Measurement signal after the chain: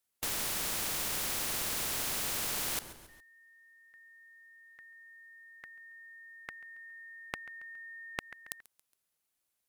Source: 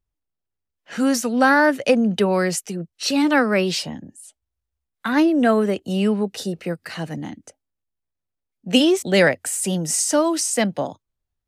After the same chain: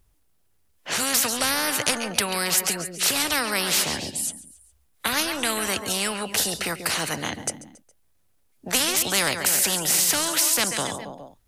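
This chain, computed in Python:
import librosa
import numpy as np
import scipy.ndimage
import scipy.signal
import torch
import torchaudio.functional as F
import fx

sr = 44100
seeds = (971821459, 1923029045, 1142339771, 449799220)

y = fx.peak_eq(x, sr, hz=11000.0, db=6.5, octaves=0.72)
y = fx.echo_feedback(y, sr, ms=138, feedback_pct=47, wet_db=-21)
y = fx.spectral_comp(y, sr, ratio=4.0)
y = y * 10.0 ** (3.0 / 20.0)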